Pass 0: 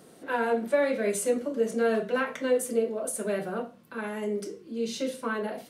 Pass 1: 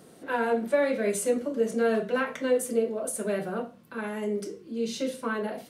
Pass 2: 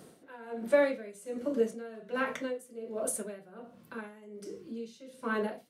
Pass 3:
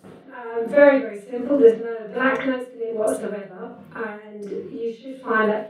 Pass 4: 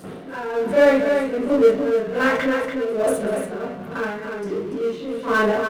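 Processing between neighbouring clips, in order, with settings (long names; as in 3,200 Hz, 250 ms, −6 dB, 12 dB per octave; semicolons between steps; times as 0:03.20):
parametric band 79 Hz +3.5 dB 2.5 octaves
tremolo with a sine in dB 1.3 Hz, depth 21 dB
convolution reverb, pre-delay 37 ms, DRR −15 dB; level −3 dB
multi-tap delay 190/287 ms −18.5/−8.5 dB; power curve on the samples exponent 0.7; level −3.5 dB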